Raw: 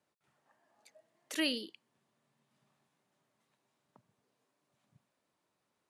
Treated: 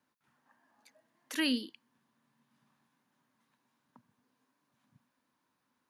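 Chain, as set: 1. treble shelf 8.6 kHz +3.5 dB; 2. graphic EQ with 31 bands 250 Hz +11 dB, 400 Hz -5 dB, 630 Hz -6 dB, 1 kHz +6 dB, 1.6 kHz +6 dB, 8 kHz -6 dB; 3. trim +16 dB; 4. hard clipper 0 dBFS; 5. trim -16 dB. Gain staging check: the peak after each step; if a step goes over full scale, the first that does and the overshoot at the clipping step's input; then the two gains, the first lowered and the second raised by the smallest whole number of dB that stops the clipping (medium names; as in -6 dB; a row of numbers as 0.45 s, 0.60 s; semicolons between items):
-19.5 dBFS, -18.0 dBFS, -2.0 dBFS, -2.0 dBFS, -18.0 dBFS; nothing clips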